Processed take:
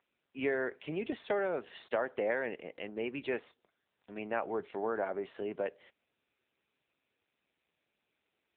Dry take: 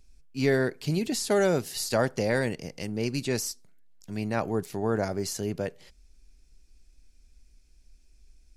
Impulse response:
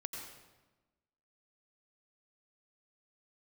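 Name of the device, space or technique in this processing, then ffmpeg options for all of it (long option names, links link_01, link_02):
voicemail: -filter_complex "[0:a]asettb=1/sr,asplit=3[link_01][link_02][link_03];[link_01]atrim=end=1.884[link_04];[link_02]atrim=start=1.88:end=2.6,asetpts=PTS-STARTPTS,afade=type=in:duration=0.004:curve=qsin,afade=type=out:start_time=0.716:duration=0.004:curve=qsin,agate=range=-31dB:threshold=-37dB:ratio=16:detection=peak[link_05];[link_03]atrim=start=2.596[link_06];[link_04][link_05]acrossfade=duration=0.004:curve1=hsin:curve2=qsin[link_07];[link_07][link_06]acrossfade=duration=0.004:curve1=qsin:curve2=hsin,highpass=430,lowpass=2900,acompressor=threshold=-27dB:ratio=12" -ar 8000 -c:a libopencore_amrnb -b:a 7950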